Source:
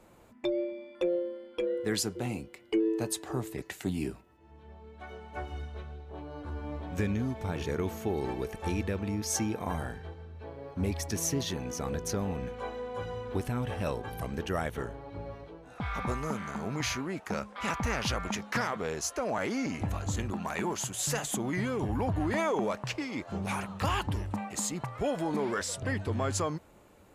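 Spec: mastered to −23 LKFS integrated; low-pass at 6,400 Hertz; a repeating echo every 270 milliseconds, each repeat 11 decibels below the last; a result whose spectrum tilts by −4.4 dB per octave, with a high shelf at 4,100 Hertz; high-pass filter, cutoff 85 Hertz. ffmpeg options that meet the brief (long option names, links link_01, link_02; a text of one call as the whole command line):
ffmpeg -i in.wav -af "highpass=85,lowpass=6400,highshelf=frequency=4100:gain=4.5,aecho=1:1:270|540|810:0.282|0.0789|0.0221,volume=10dB" out.wav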